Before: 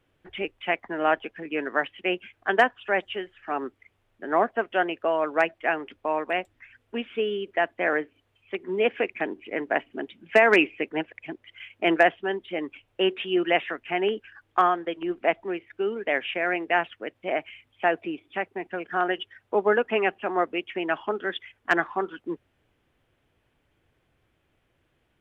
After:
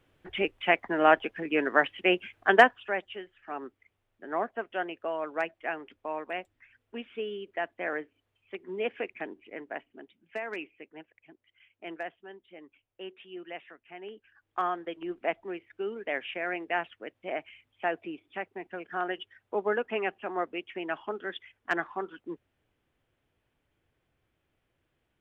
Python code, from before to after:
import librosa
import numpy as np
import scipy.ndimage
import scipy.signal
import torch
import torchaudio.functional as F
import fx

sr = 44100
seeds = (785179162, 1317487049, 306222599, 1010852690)

y = fx.gain(x, sr, db=fx.line((2.61, 2.0), (3.02, -8.5), (9.16, -8.5), (10.46, -19.0), (14.02, -19.0), (14.77, -7.0)))